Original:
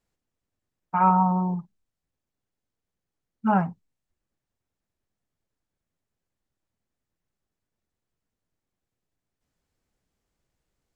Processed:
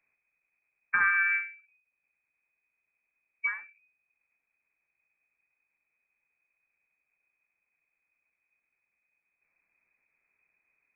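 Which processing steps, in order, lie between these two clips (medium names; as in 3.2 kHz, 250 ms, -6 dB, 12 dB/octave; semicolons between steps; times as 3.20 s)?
compression 4:1, threshold -26 dBFS, peak gain reduction 10 dB; frequency inversion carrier 2.5 kHz; endings held to a fixed fall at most 130 dB/s; trim +2.5 dB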